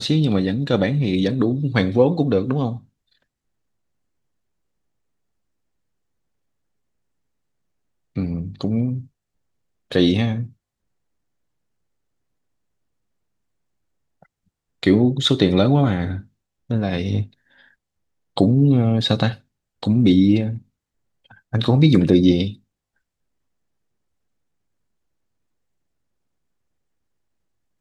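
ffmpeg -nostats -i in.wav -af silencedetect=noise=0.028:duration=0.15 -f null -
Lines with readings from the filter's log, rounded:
silence_start: 2.78
silence_end: 8.16 | silence_duration: 5.38
silence_start: 9.01
silence_end: 9.92 | silence_duration: 0.90
silence_start: 10.47
silence_end: 14.83 | silence_duration: 4.36
silence_start: 16.20
silence_end: 16.70 | silence_duration: 0.50
silence_start: 17.24
silence_end: 18.37 | silence_duration: 1.13
silence_start: 19.34
silence_end: 19.83 | silence_duration: 0.49
silence_start: 20.58
silence_end: 21.53 | silence_duration: 0.95
silence_start: 22.53
silence_end: 27.81 | silence_duration: 5.27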